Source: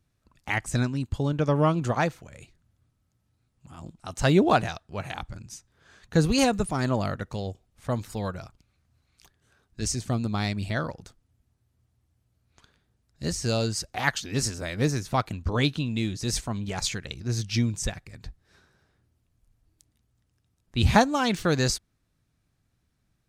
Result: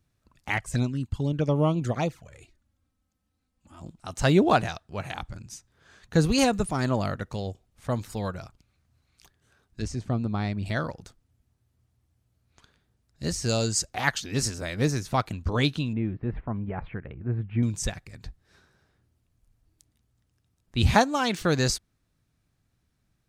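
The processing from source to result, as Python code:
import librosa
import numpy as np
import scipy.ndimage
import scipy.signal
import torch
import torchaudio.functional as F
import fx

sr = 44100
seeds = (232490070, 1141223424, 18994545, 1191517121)

y = fx.env_flanger(x, sr, rest_ms=3.9, full_db=-20.0, at=(0.57, 3.81))
y = fx.lowpass(y, sr, hz=1400.0, slope=6, at=(9.82, 10.66))
y = fx.peak_eq(y, sr, hz=7200.0, db=10.0, octaves=0.48, at=(13.49, 13.89))
y = fx.bessel_lowpass(y, sr, hz=1300.0, order=8, at=(15.93, 17.63))
y = fx.highpass(y, sr, hz=220.0, slope=6, at=(20.94, 21.41))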